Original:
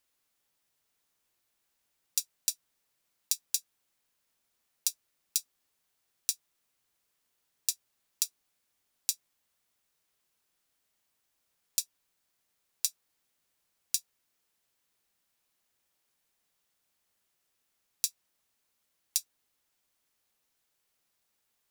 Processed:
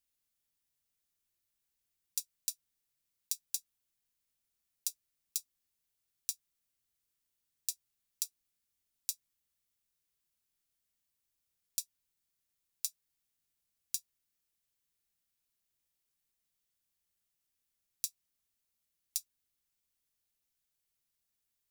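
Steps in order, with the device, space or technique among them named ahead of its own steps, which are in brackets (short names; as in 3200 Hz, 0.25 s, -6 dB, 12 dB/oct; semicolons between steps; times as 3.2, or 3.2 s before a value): smiley-face EQ (low shelf 120 Hz +7.5 dB; bell 800 Hz -7 dB 2.5 oct; high shelf 8600 Hz +4 dB); gain -8 dB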